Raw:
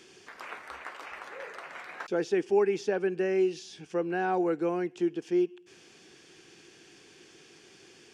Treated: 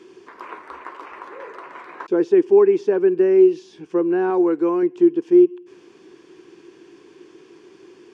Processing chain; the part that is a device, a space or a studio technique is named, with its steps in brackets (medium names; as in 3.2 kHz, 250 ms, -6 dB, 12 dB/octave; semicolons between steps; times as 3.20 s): inside a helmet (treble shelf 4.4 kHz -8.5 dB; small resonant body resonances 350/1000 Hz, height 14 dB, ringing for 20 ms); 4.30–4.83 s: tilt EQ +1.5 dB/octave